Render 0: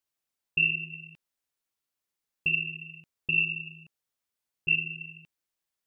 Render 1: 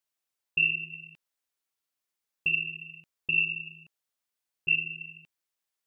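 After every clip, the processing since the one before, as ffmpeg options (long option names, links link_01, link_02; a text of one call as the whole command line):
ffmpeg -i in.wav -af "lowshelf=frequency=300:gain=-6.5" out.wav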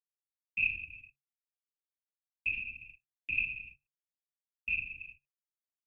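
ffmpeg -i in.wav -af "afftfilt=real='hypot(re,im)*cos(2*PI*random(0))':imag='hypot(re,im)*sin(2*PI*random(1))':win_size=512:overlap=0.75,agate=range=-31dB:threshold=-50dB:ratio=16:detection=peak,afreqshift=-140" out.wav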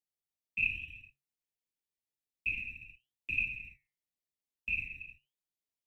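ffmpeg -i in.wav -filter_complex "[0:a]acrossover=split=560[link_01][link_02];[link_01]acrusher=samples=23:mix=1:aa=0.000001[link_03];[link_02]flanger=delay=4.7:depth=4.7:regen=85:speed=0.89:shape=sinusoidal[link_04];[link_03][link_04]amix=inputs=2:normalize=0,asuperstop=centerf=1300:order=8:qfactor=1.6,volume=3.5dB" out.wav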